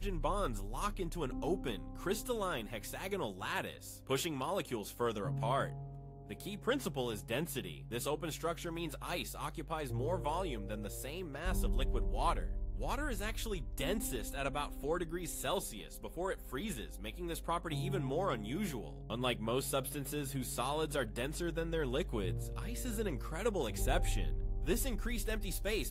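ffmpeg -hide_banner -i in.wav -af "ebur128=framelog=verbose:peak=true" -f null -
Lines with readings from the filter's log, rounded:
Integrated loudness:
  I:         -38.3 LUFS
  Threshold: -48.3 LUFS
Loudness range:
  LRA:         2.2 LU
  Threshold: -58.4 LUFS
  LRA low:   -39.5 LUFS
  LRA high:  -37.3 LUFS
True peak:
  Peak:      -18.7 dBFS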